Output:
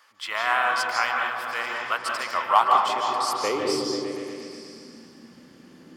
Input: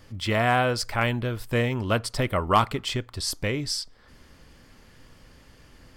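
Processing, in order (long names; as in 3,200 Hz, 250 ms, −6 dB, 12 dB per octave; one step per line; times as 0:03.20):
high-pass filter sweep 1,100 Hz → 240 Hz, 0:02.23–0:04.21
echo whose low-pass opens from repeat to repeat 120 ms, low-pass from 200 Hz, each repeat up 1 octave, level 0 dB
on a send at −1.5 dB: convolution reverb RT60 0.60 s, pre-delay 134 ms
on the sum: level −3 dB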